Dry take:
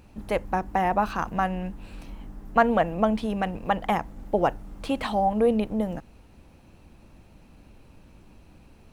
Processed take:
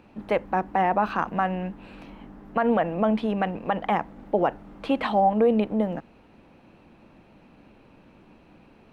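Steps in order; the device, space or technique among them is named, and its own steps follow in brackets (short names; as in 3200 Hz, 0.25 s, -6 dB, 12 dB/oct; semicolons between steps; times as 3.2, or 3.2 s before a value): DJ mixer with the lows and highs turned down (three-band isolator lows -15 dB, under 150 Hz, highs -17 dB, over 3700 Hz; limiter -15 dBFS, peak gain reduction 10 dB); gain +3.5 dB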